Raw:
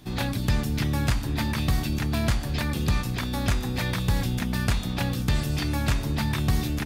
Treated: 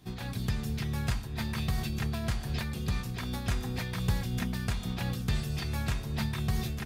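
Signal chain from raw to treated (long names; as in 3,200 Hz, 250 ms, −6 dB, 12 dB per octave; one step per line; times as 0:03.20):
notch comb filter 290 Hz
amplitude modulation by smooth noise, depth 65%
level −3 dB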